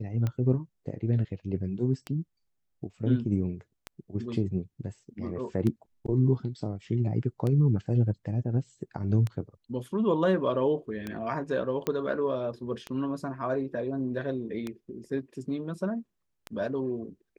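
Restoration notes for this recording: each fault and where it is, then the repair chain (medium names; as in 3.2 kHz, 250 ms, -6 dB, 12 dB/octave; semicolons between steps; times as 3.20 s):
tick 33 1/3 rpm -19 dBFS
11.87 s: pop -15 dBFS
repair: de-click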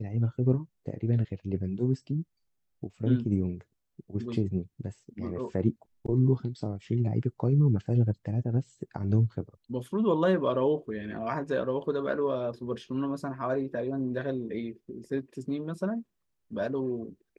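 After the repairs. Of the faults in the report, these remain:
nothing left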